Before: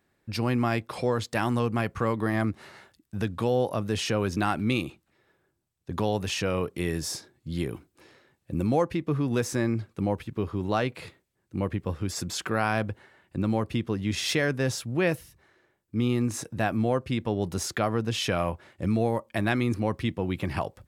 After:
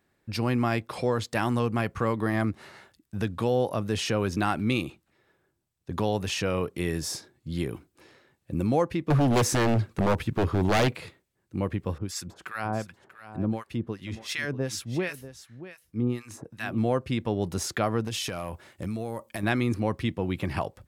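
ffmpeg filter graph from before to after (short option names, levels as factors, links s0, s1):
-filter_complex "[0:a]asettb=1/sr,asplit=3[s0][s1][s2];[s0]atrim=end=9.104[s3];[s1]atrim=start=9.1:end=10.97,asetpts=PTS-STARTPTS,afade=t=in:d=0.004:c=qsin,afade=t=out:st=1.866:d=0.004:c=qsin,lowshelf=f=130:g=3,acontrast=80,aeval=exprs='0.15*(abs(mod(val(0)/0.15+3,4)-2)-1)':c=same[s4];[s2]atrim=start=10.966[s5];[s3][s4]acrossfade=d=0.004:c1=hsin:c2=qsin[s6];[s6][s5]acrossfade=d=0.004:c1=qsin:c2=hsin,asettb=1/sr,asplit=3[s7][s8][s9];[s7]atrim=end=11.984[s10];[s8]atrim=start=11.98:end=16.78,asetpts=PTS-STARTPTS,afade=t=in:d=0.004:c=qsin,afade=t=out:st=4.796:d=0.004:c=qsin,acrossover=split=1100[s11][s12];[s11]aeval=exprs='val(0)*(1-1/2+1/2*cos(2*PI*2.7*n/s))':c=same[s13];[s12]aeval=exprs='val(0)*(1-1/2-1/2*cos(2*PI*2.7*n/s))':c=same[s14];[s13][s14]amix=inputs=2:normalize=0,aecho=1:1:639:0.2,atrim=end_sample=211680[s15];[s9]atrim=start=16.776[s16];[s10][s15]acrossfade=d=0.004:c1=hsin:c2=qsin[s17];[s17][s16]acrossfade=d=0.004:c1=qsin:c2=hsin,asettb=1/sr,asplit=3[s18][s19][s20];[s18]atrim=end=18.074[s21];[s19]atrim=start=18.07:end=19.43,asetpts=PTS-STARTPTS,afade=t=in:d=0.004:c=qsin,afade=t=out:st=1.356:d=0.004:c=qsin,highshelf=f=5800:g=11,acompressor=threshold=0.0447:ratio=12:attack=3.2:release=140:knee=1:detection=peak,asoftclip=type=hard:threshold=0.0708[s22];[s20]atrim=start=19.426[s23];[s21][s22]acrossfade=d=0.004:c1=hsin:c2=qsin[s24];[s24][s23]acrossfade=d=0.004:c1=qsin:c2=hsin"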